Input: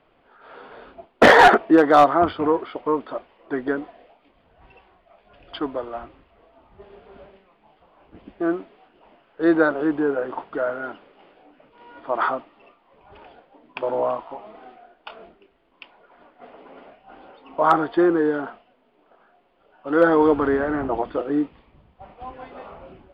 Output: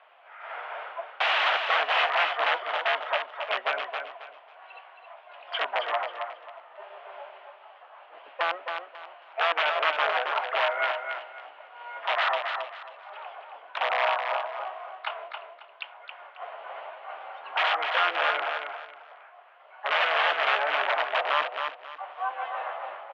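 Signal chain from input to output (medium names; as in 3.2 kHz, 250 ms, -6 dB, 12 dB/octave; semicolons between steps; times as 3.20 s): harmony voices +7 st -5 dB; compression 3:1, threshold -27 dBFS, peak gain reduction 15.5 dB; integer overflow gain 21.5 dB; elliptic band-pass 640–3100 Hz, stop band 70 dB; feedback delay 271 ms, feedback 27%, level -6 dB; trim +6 dB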